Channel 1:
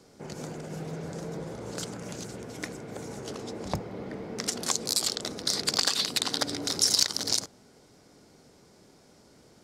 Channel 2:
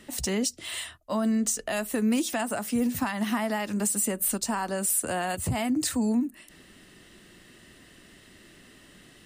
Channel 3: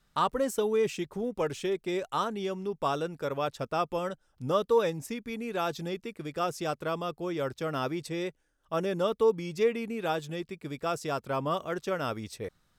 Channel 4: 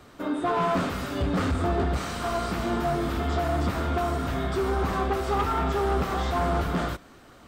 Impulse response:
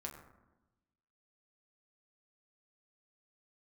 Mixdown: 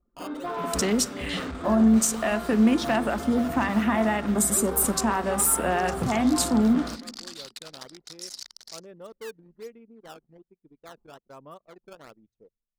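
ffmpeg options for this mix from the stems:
-filter_complex "[0:a]highpass=860,alimiter=limit=-14dB:level=0:latency=1:release=379,adelay=1400,volume=-10.5dB[link_01];[1:a]afwtdn=0.0126,adelay=550,volume=1.5dB,asplit=2[link_02][link_03];[link_03]volume=-4.5dB[link_04];[2:a]acrusher=samples=13:mix=1:aa=0.000001:lfo=1:lforange=20.8:lforate=1.2,volume=-15.5dB,asplit=2[link_05][link_06];[link_06]volume=-18dB[link_07];[3:a]volume=-6.5dB[link_08];[4:a]atrim=start_sample=2205[link_09];[link_04][link_07]amix=inputs=2:normalize=0[link_10];[link_10][link_09]afir=irnorm=-1:irlink=0[link_11];[link_01][link_02][link_05][link_08][link_11]amix=inputs=5:normalize=0,anlmdn=0.0251,equalizer=frequency=92:width_type=o:width=0.51:gain=-14.5"

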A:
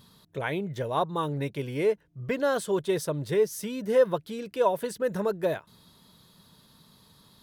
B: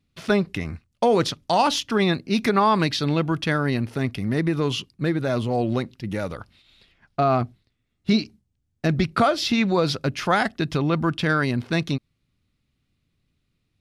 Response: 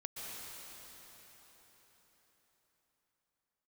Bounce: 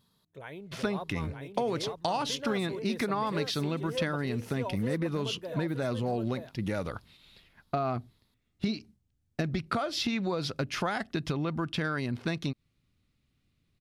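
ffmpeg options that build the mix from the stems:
-filter_complex "[0:a]volume=-13.5dB,asplit=2[link_01][link_02];[link_02]volume=-4dB[link_03];[1:a]acompressor=threshold=-26dB:ratio=6,adelay=550,volume=-1.5dB[link_04];[link_03]aecho=0:1:919:1[link_05];[link_01][link_04][link_05]amix=inputs=3:normalize=0"

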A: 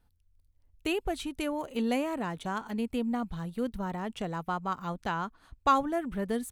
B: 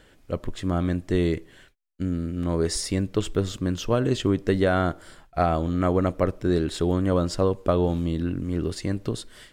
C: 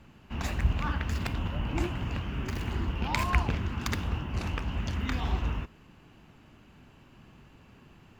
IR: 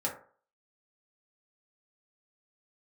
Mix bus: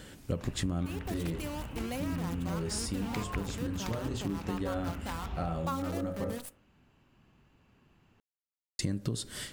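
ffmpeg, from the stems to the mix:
-filter_complex "[0:a]highshelf=frequency=8400:gain=12,acrusher=bits=6:dc=4:mix=0:aa=0.000001,volume=-10.5dB,asplit=3[link_01][link_02][link_03];[link_02]volume=-15dB[link_04];[1:a]highpass=frequency=190:poles=1,bass=frequency=250:gain=13,treble=frequency=4000:gain=8,acompressor=threshold=-27dB:ratio=2,volume=2.5dB,asplit=3[link_05][link_06][link_07];[link_05]atrim=end=6.3,asetpts=PTS-STARTPTS,afade=type=out:start_time=6.296:duration=0.004:curve=hsin[link_08];[link_06]atrim=start=6.3:end=8.79,asetpts=PTS-STARTPTS,volume=0[link_09];[link_07]atrim=start=8.79,asetpts=PTS-STARTPTS,afade=type=in:duration=0.004:curve=hsin[link_10];[link_08][link_09][link_10]concat=n=3:v=0:a=1,asplit=2[link_11][link_12];[link_12]volume=-17dB[link_13];[2:a]volume=-10dB[link_14];[link_03]apad=whole_len=420081[link_15];[link_11][link_15]sidechaincompress=threshold=-54dB:ratio=8:attack=16:release=1280[link_16];[3:a]atrim=start_sample=2205[link_17];[link_04][link_13]amix=inputs=2:normalize=0[link_18];[link_18][link_17]afir=irnorm=-1:irlink=0[link_19];[link_01][link_16][link_14][link_19]amix=inputs=4:normalize=0,acompressor=threshold=-29dB:ratio=6"

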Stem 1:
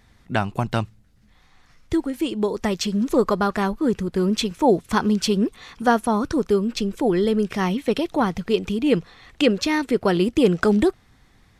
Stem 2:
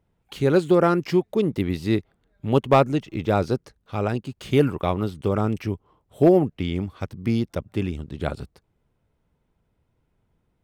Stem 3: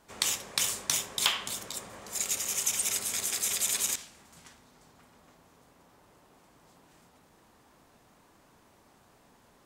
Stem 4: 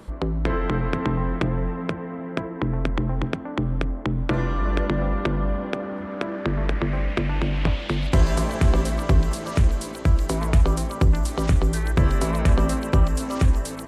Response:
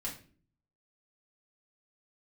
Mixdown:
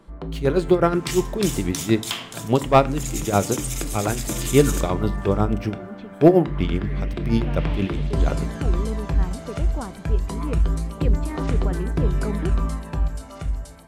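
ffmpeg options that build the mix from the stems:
-filter_complex "[0:a]lowpass=1700,adelay=1600,volume=-16dB[link_01];[1:a]agate=range=-10dB:threshold=-45dB:ratio=16:detection=peak,tremolo=f=8.3:d=0.74,volume=0.5dB,asplit=3[link_02][link_03][link_04];[link_03]volume=-12dB[link_05];[2:a]agate=range=-33dB:threshold=-54dB:ratio=3:detection=peak,adelay=850,volume=-6.5dB,asplit=2[link_06][link_07];[link_07]volume=-6dB[link_08];[3:a]aphaser=in_gain=1:out_gain=1:delay=1.4:decay=0.41:speed=0.26:type=sinusoidal,volume=-15dB,asplit=2[link_09][link_10];[link_10]volume=-4dB[link_11];[link_04]apad=whole_len=581963[link_12];[link_01][link_12]sidechaincompress=threshold=-32dB:ratio=8:attack=16:release=503[link_13];[4:a]atrim=start_sample=2205[link_14];[link_05][link_08][link_11]amix=inputs=3:normalize=0[link_15];[link_15][link_14]afir=irnorm=-1:irlink=0[link_16];[link_13][link_02][link_06][link_09][link_16]amix=inputs=5:normalize=0,dynaudnorm=framelen=280:gausssize=9:maxgain=4dB"

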